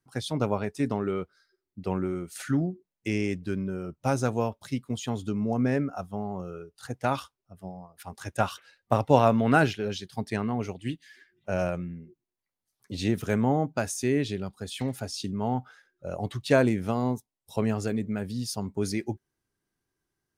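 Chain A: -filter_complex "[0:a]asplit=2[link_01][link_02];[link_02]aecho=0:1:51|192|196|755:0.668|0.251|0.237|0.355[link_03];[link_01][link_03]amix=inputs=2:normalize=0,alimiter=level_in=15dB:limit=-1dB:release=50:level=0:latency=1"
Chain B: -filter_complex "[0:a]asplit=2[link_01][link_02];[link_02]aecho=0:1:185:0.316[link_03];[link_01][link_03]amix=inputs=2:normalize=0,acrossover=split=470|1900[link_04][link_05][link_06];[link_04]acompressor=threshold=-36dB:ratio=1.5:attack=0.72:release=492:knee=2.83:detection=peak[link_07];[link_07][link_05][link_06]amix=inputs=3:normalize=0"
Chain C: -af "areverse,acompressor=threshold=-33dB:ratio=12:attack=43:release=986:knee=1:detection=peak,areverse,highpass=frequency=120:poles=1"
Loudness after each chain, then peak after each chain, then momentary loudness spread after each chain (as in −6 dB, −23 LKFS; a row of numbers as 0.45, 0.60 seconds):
−14.5, −31.5, −40.0 LKFS; −1.0, −7.0, −18.0 dBFS; 12, 16, 8 LU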